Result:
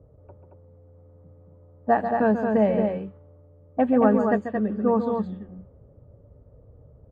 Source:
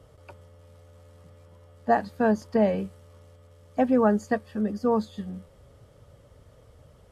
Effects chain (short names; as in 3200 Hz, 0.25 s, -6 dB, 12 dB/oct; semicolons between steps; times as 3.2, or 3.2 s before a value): low-pass opened by the level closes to 500 Hz, open at -18.5 dBFS; running mean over 8 samples; loudspeakers at several distances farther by 48 m -9 dB, 77 m -5 dB; gain +1.5 dB